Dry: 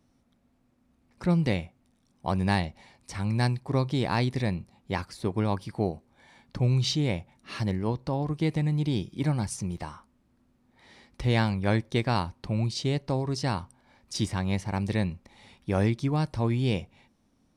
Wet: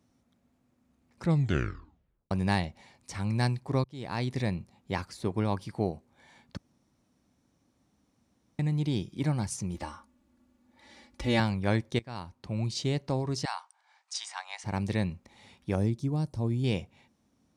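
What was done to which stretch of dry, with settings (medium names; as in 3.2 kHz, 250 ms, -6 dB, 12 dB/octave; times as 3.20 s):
1.24 s: tape stop 1.07 s
3.84–4.40 s: fade in
6.57–8.59 s: room tone
9.74–11.40 s: comb 3.5 ms, depth 77%
11.99–12.76 s: fade in, from -22 dB
13.45–14.64 s: Chebyshev band-pass 760–9100 Hz, order 4
15.75–16.64 s: peaking EQ 1.9 kHz -14 dB 2.6 oct
whole clip: high-pass 53 Hz; peaking EQ 6.8 kHz +4 dB 0.33 oct; trim -2 dB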